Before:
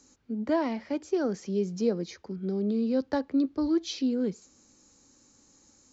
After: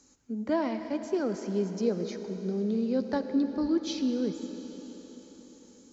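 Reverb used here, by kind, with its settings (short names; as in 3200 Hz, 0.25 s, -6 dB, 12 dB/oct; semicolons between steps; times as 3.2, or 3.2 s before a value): digital reverb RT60 5 s, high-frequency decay 1×, pre-delay 45 ms, DRR 8 dB; gain -1.5 dB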